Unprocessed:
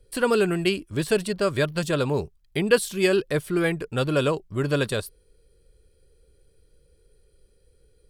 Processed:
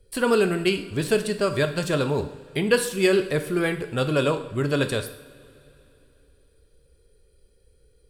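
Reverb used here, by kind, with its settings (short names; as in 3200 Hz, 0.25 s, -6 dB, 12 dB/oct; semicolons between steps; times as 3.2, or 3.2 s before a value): two-slope reverb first 0.64 s, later 3.3 s, from -18 dB, DRR 7 dB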